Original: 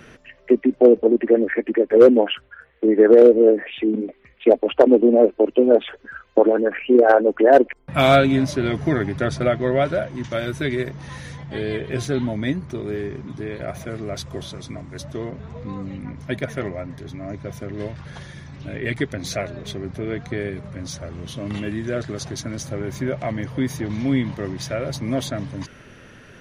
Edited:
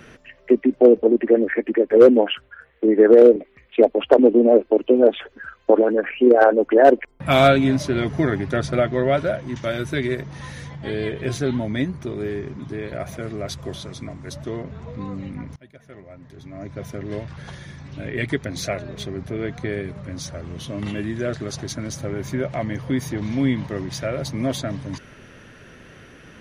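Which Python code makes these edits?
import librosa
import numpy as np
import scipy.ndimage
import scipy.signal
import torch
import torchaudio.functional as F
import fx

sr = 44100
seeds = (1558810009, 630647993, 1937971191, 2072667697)

y = fx.edit(x, sr, fx.cut(start_s=3.36, length_s=0.68),
    fx.fade_in_from(start_s=16.24, length_s=1.29, curve='qua', floor_db=-23.0), tone=tone)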